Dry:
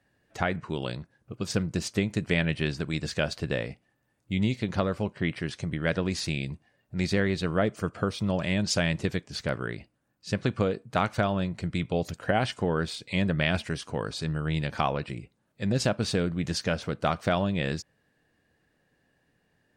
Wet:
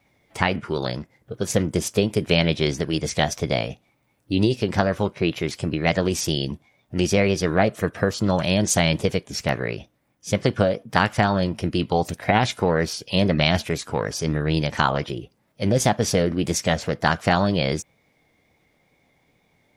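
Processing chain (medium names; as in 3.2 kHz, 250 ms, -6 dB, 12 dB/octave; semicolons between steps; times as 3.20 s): wow and flutter 28 cents; formant shift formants +4 st; trim +6.5 dB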